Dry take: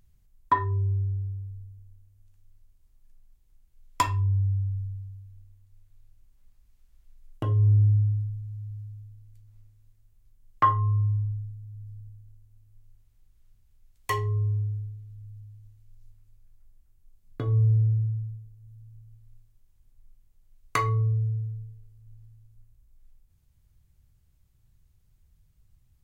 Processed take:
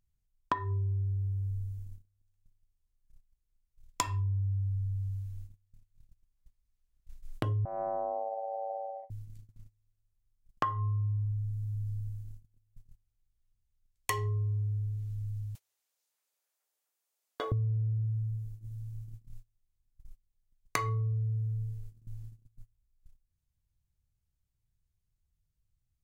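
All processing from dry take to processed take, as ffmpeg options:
-filter_complex "[0:a]asettb=1/sr,asplit=3[s0][s1][s2];[s0]atrim=end=7.654[s3];[s1]atrim=start=7.65:end=9.1,asetpts=PTS-STARTPTS,afade=t=in:d=0.004:c=qsin,afade=t=out:st=1.446:d=0.004:c=qsin,lowpass=f=1100:w=0.5412,lowpass=f=1100:w=1.3066,aeval=exprs='(tanh(28.2*val(0)+0.75)-tanh(0.75))/28.2':c=same,aeval=exprs='val(0)*sin(2*PI*670*n/s)':c=same[s4];[s2]atrim=start=9.096[s5];[s3][s4]acrossfade=d=0.004:c1=hsin:c2=qsin[s6];[s6][s5]acrossfade=d=0.004:c1=qsin:c2=hsin,asettb=1/sr,asplit=3[s7][s8][s9];[s7]atrim=end=15.554[s10];[s8]atrim=start=15.55:end=17.52,asetpts=PTS-STARTPTS,afade=t=in:d=0.004:c=qsin,afade=t=out:st=1.966:d=0.004:c=qsin,highpass=f=500:w=0.5412,highpass=f=500:w=1.3066,acompressor=mode=upward:threshold=0.00178:ratio=2.5:attack=3.2:release=140:knee=2.83:detection=peak[s11];[s9]atrim=start=17.516[s12];[s10][s11]acrossfade=d=0.004:c1=hsin:c2=qsin[s13];[s13][s12]acrossfade=d=0.004:c1=qsin:c2=hsin,agate=range=0.0631:threshold=0.00355:ratio=16:detection=peak,equalizer=f=6700:t=o:w=1.7:g=3.5,acompressor=threshold=0.0126:ratio=6,volume=2.37"

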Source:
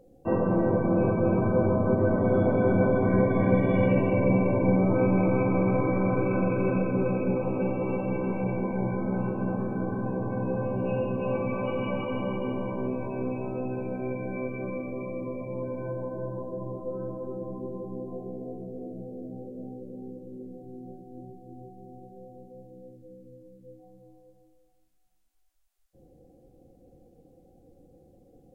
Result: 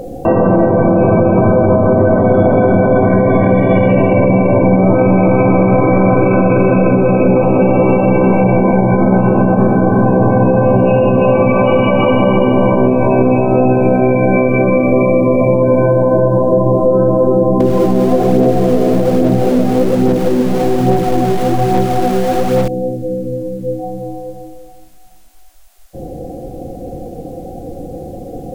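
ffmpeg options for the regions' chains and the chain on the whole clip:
-filter_complex "[0:a]asettb=1/sr,asplit=3[s0][s1][s2];[s0]atrim=end=17.604[s3];[s1]atrim=start=17.6:end=22.68,asetpts=PTS-STARTPTS,afade=t=in:d=0.004:c=qsin,afade=t=out:st=5.076:d=0.004:c=qsin,aeval=exprs='val(0)+0.5*0.00473*sgn(val(0))':c=same,aphaser=in_gain=1:out_gain=1:delay=4.9:decay=0.4:speed=1.2:type=sinusoidal,aecho=1:1:857:0.299,atrim=end_sample=224028[s4];[s2]atrim=start=22.676[s5];[s3][s4]acrossfade=d=0.004:c1=hsin:c2=qsin[s6];[s6][s5]acrossfade=d=0.004:c1=qsin:c2=hsin,acompressor=threshold=0.0126:ratio=3,equalizer=f=690:w=4.2:g=7.5,alimiter=level_in=31.6:limit=0.891:release=50:level=0:latency=1,volume=0.891"

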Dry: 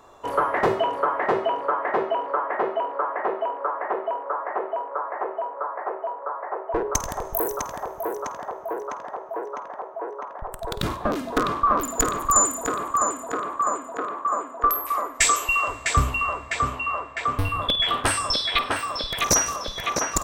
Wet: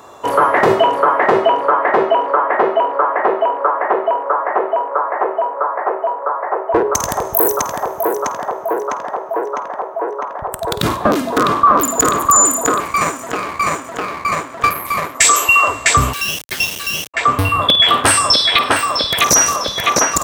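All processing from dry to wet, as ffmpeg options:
-filter_complex "[0:a]asettb=1/sr,asplit=3[s0][s1][s2];[s0]atrim=end=12.804[s3];[s1]atrim=start=12.8:end=15.15,asetpts=PTS-STARTPTS,afade=t=in:d=0.004:c=qsin,afade=t=out:st=2.346:d=0.004:c=qsin,acrossover=split=3700[s4][s5];[s5]acompressor=threshold=0.00891:ratio=4:attack=1:release=60[s6];[s4][s6]amix=inputs=2:normalize=0,aeval=exprs='max(val(0),0)':c=same[s7];[s2]atrim=start=15.146[s8];[s3][s7]acrossfade=d=0.004:c1=hsin:c2=qsin[s9];[s9][s8]acrossfade=d=0.004:c1=qsin:c2=hsin,asettb=1/sr,asplit=3[s10][s11][s12];[s10]atrim=end=16.134[s13];[s11]atrim=start=16.13:end=17.14,asetpts=PTS-STARTPTS,afade=t=in:d=0.004:c=qsin,afade=t=out:st=1.006:d=0.004:c=qsin,acrossover=split=520 2100:gain=0.224 1 0.126[s14][s15][s16];[s14][s15][s16]amix=inputs=3:normalize=0,lowpass=f=3300:t=q:w=0.5098,lowpass=f=3300:t=q:w=0.6013,lowpass=f=3300:t=q:w=0.9,lowpass=f=3300:t=q:w=2.563,afreqshift=-3900,acrusher=bits=3:dc=4:mix=0:aa=0.000001[s17];[s12]atrim=start=17.136[s18];[s13][s17]acrossfade=d=0.004:c1=hsin:c2=qsin[s19];[s19][s18]acrossfade=d=0.004:c1=qsin:c2=hsin,highpass=90,highshelf=f=7100:g=4.5,alimiter=level_in=3.98:limit=0.891:release=50:level=0:latency=1,volume=0.891"

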